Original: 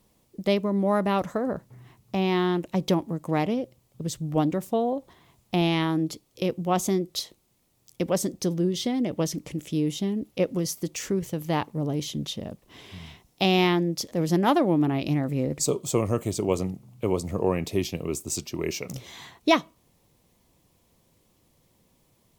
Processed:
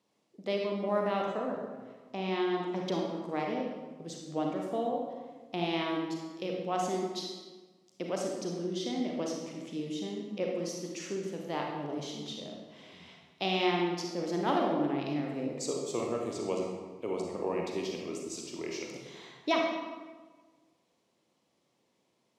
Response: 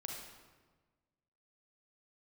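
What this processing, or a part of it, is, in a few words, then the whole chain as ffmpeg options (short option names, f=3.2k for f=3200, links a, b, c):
supermarket ceiling speaker: -filter_complex "[0:a]highpass=260,lowpass=6.2k[a];[1:a]atrim=start_sample=2205[b];[a][b]afir=irnorm=-1:irlink=0,volume=-4dB"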